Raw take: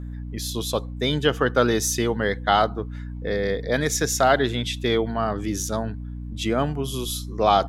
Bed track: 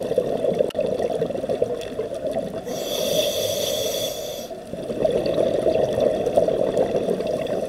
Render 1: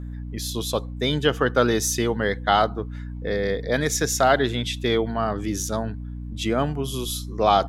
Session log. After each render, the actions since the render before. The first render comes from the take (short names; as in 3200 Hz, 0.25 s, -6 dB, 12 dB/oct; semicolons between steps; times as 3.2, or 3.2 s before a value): nothing audible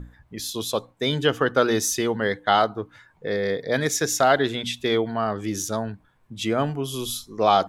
notches 60/120/180/240/300 Hz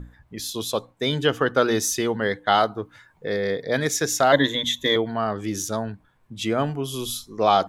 2.5–3.38 high shelf 6900 Hz +5 dB; 4.32–4.96 ripple EQ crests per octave 1.1, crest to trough 15 dB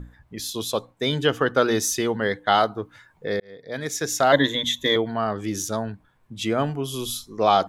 3.4–4.3 fade in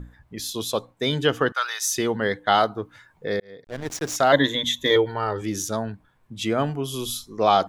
1.52–1.96 HPF 1000 Hz 24 dB/oct; 3.64–4.16 backlash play -25 dBFS; 4.9–5.42 comb 2.2 ms, depth 74%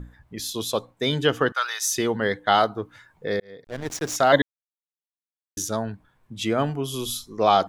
4.42–5.57 mute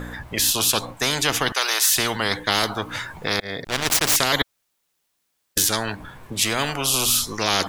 spectral compressor 4:1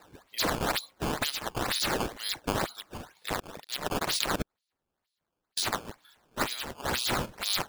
band-pass 4200 Hz, Q 4.5; decimation with a swept rate 13×, swing 160% 2.1 Hz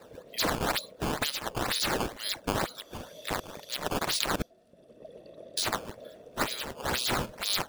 add bed track -27.5 dB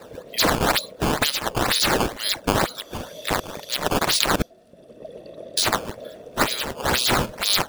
gain +9 dB